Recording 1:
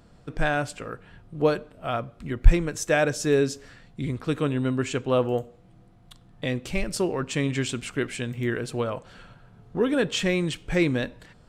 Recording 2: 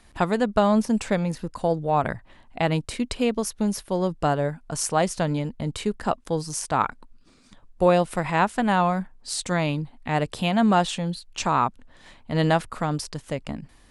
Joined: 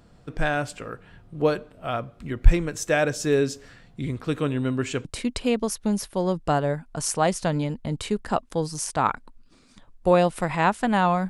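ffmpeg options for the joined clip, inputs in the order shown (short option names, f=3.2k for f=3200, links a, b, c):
-filter_complex "[0:a]apad=whole_dur=11.29,atrim=end=11.29,atrim=end=5.052[a];[1:a]atrim=start=2.798:end=9.04[b];[a][b]acrossfade=d=0.004:c1=hsin:c2=hsin"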